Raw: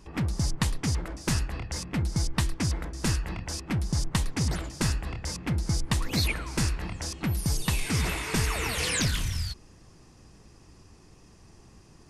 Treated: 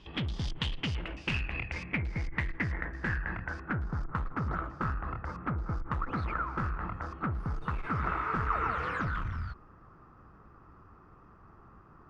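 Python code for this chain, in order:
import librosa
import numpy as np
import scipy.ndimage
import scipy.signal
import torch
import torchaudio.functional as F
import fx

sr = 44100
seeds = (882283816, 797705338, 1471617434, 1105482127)

y = fx.tube_stage(x, sr, drive_db=26.0, bias=0.3)
y = fx.filter_sweep_lowpass(y, sr, from_hz=3300.0, to_hz=1300.0, start_s=0.45, end_s=4.21, q=7.5)
y = y * 10.0 ** (-2.5 / 20.0)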